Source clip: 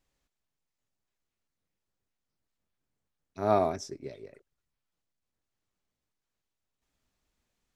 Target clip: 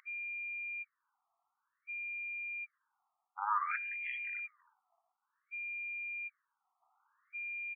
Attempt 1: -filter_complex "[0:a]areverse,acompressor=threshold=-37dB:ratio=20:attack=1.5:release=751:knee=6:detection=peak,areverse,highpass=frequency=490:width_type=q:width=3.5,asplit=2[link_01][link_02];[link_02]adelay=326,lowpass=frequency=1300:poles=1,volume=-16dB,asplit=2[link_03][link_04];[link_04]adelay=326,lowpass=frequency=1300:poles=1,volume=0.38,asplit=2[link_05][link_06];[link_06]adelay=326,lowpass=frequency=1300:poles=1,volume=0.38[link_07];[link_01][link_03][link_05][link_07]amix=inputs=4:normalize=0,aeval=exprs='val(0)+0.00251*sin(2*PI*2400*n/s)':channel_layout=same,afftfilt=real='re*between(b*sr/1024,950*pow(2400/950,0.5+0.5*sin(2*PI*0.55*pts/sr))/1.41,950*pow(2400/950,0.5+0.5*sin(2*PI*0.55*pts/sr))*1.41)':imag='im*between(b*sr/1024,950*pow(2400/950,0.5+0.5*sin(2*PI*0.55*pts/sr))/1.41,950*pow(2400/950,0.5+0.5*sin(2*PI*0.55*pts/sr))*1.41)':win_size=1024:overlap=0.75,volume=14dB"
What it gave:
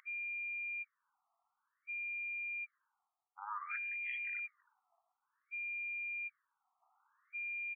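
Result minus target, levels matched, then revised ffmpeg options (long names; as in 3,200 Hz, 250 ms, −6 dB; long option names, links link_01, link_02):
downward compressor: peak gain reduction +10 dB
-filter_complex "[0:a]areverse,acompressor=threshold=-26.5dB:ratio=20:attack=1.5:release=751:knee=6:detection=peak,areverse,highpass=frequency=490:width_type=q:width=3.5,asplit=2[link_01][link_02];[link_02]adelay=326,lowpass=frequency=1300:poles=1,volume=-16dB,asplit=2[link_03][link_04];[link_04]adelay=326,lowpass=frequency=1300:poles=1,volume=0.38,asplit=2[link_05][link_06];[link_06]adelay=326,lowpass=frequency=1300:poles=1,volume=0.38[link_07];[link_01][link_03][link_05][link_07]amix=inputs=4:normalize=0,aeval=exprs='val(0)+0.00251*sin(2*PI*2400*n/s)':channel_layout=same,afftfilt=real='re*between(b*sr/1024,950*pow(2400/950,0.5+0.5*sin(2*PI*0.55*pts/sr))/1.41,950*pow(2400/950,0.5+0.5*sin(2*PI*0.55*pts/sr))*1.41)':imag='im*between(b*sr/1024,950*pow(2400/950,0.5+0.5*sin(2*PI*0.55*pts/sr))/1.41,950*pow(2400/950,0.5+0.5*sin(2*PI*0.55*pts/sr))*1.41)':win_size=1024:overlap=0.75,volume=14dB"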